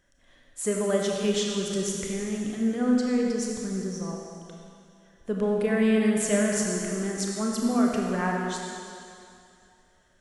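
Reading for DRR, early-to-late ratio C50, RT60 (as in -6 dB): -1.5 dB, 0.0 dB, 2.5 s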